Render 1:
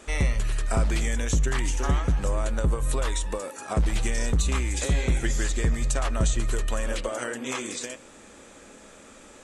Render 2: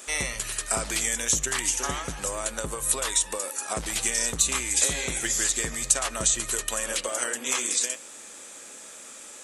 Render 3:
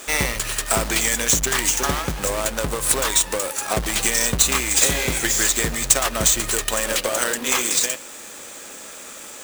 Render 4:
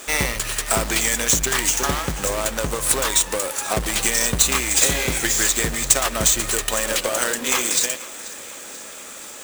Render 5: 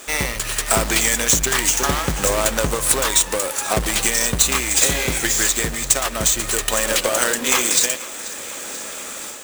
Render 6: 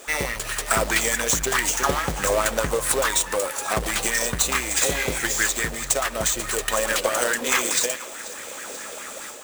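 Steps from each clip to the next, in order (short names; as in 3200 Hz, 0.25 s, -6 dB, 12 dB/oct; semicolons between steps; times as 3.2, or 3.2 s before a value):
RIAA curve recording
half-waves squared off; gain +3 dB
thinning echo 0.486 s, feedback 63%, level -18 dB
AGC gain up to 7 dB; gain -1 dB
LFO bell 4.7 Hz 460–1900 Hz +10 dB; gain -6 dB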